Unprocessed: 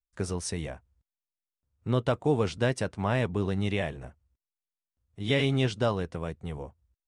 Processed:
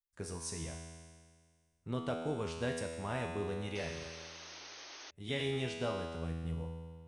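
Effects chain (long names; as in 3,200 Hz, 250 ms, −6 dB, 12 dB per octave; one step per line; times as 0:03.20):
high-shelf EQ 8,400 Hz +9.5 dB
tuned comb filter 82 Hz, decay 1.8 s, harmonics all, mix 90%
sound drawn into the spectrogram noise, 0:03.75–0:05.11, 270–6,500 Hz −56 dBFS
level +5.5 dB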